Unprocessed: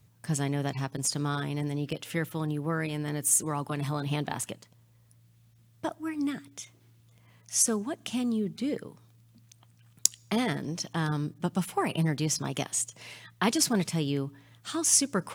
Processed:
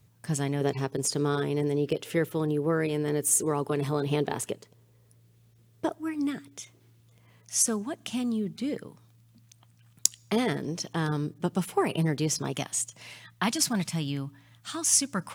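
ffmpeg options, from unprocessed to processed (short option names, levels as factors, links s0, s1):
-af "asetnsamples=n=441:p=0,asendcmd='0.61 equalizer g 13;5.93 equalizer g 5;7.54 equalizer g -1.5;10.32 equalizer g 6.5;12.53 equalizer g -4.5;13.44 equalizer g -11.5',equalizer=f=420:t=o:w=0.59:g=2.5"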